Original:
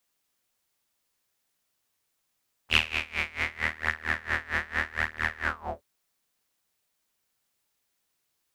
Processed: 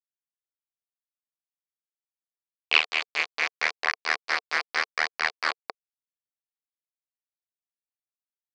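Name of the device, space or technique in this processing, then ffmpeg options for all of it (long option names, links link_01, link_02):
hand-held game console: -af "acrusher=bits=3:mix=0:aa=0.000001,highpass=420,equalizer=frequency=450:width_type=q:width=4:gain=6,equalizer=frequency=730:width_type=q:width=4:gain=6,equalizer=frequency=1100:width_type=q:width=4:gain=6,equalizer=frequency=2300:width_type=q:width=4:gain=5,equalizer=frequency=4500:width_type=q:width=4:gain=9,lowpass=frequency=5200:width=0.5412,lowpass=frequency=5200:width=1.3066"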